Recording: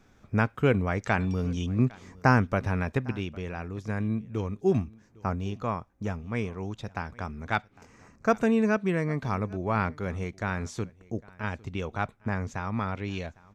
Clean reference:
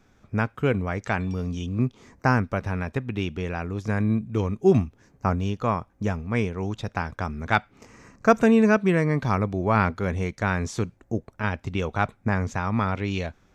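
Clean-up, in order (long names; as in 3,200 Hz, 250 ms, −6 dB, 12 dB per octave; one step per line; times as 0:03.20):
echo removal 805 ms −23.5 dB
level correction +6 dB, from 0:03.12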